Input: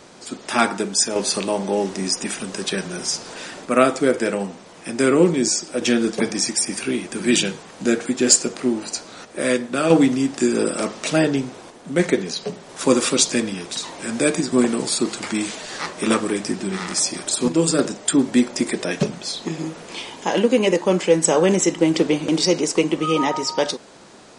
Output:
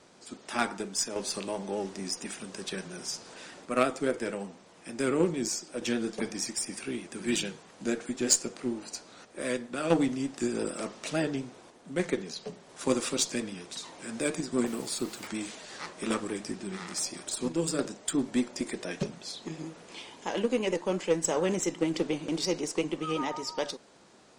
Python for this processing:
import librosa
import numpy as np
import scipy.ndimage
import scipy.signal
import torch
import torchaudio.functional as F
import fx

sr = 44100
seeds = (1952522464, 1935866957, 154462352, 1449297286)

y = fx.quant_dither(x, sr, seeds[0], bits=6, dither='none', at=(14.66, 15.27))
y = fx.cheby_harmonics(y, sr, harmonics=(3, 5, 8), levels_db=(-15, -36, -37), full_scale_db=-1.0)
y = fx.vibrato(y, sr, rate_hz=8.6, depth_cents=42.0)
y = y * librosa.db_to_amplitude(-7.0)